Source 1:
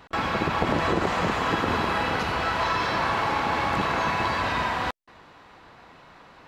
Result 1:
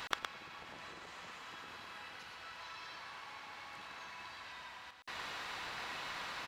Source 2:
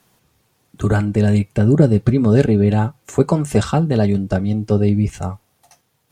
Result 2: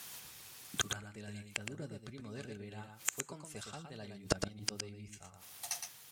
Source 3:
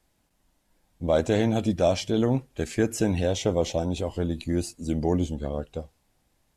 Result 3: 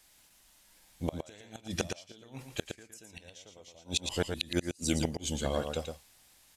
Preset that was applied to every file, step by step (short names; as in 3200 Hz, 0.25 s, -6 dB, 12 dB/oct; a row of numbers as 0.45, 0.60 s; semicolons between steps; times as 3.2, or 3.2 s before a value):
tilt shelf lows -9 dB, about 1100 Hz; flipped gate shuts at -20 dBFS, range -31 dB; echo 0.115 s -6 dB; gain +4.5 dB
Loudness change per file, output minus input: -21.0, -25.0, -9.0 LU